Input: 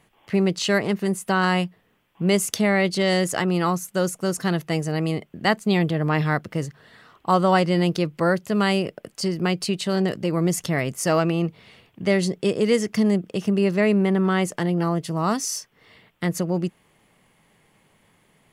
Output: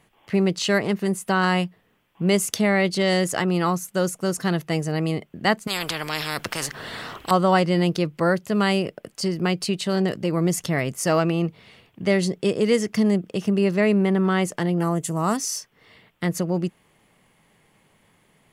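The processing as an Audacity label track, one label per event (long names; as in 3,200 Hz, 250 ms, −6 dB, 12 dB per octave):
5.670000	7.310000	every bin compressed towards the loudest bin 4 to 1
14.800000	15.370000	high shelf with overshoot 5,900 Hz +7 dB, Q 3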